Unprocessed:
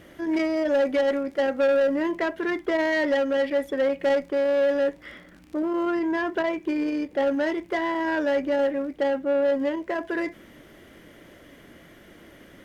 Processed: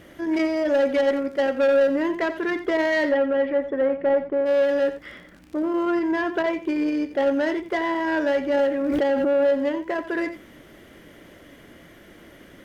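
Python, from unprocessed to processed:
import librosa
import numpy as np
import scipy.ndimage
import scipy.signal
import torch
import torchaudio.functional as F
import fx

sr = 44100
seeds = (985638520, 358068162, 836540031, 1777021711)

y = fx.lowpass(x, sr, hz=fx.line((3.08, 2200.0), (4.45, 1300.0)), slope=12, at=(3.08, 4.45), fade=0.02)
y = y + 10.0 ** (-12.5 / 20.0) * np.pad(y, (int(87 * sr / 1000.0), 0))[:len(y)]
y = fx.pre_swell(y, sr, db_per_s=21.0, at=(8.54, 9.55))
y = y * librosa.db_to_amplitude(1.5)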